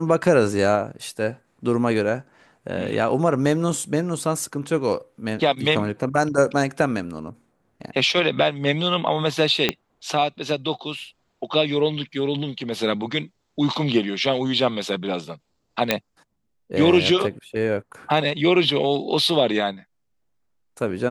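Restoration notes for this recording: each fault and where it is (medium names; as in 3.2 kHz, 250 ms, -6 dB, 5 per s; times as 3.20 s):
9.69 s: pop -5 dBFS
15.91 s: pop -3 dBFS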